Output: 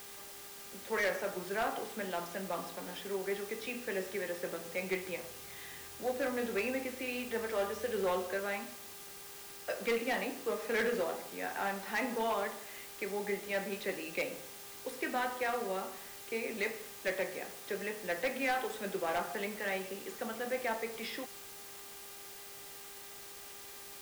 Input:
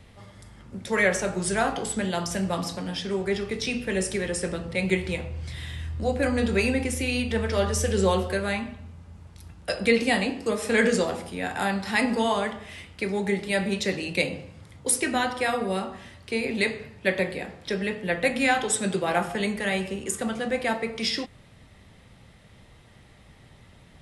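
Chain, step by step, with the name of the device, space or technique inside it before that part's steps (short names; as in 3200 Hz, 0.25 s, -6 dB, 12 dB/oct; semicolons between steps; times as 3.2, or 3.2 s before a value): aircraft radio (BPF 340–2400 Hz; hard clip -20.5 dBFS, distortion -15 dB; buzz 400 Hz, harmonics 34, -50 dBFS; white noise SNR 12 dB); gain -7 dB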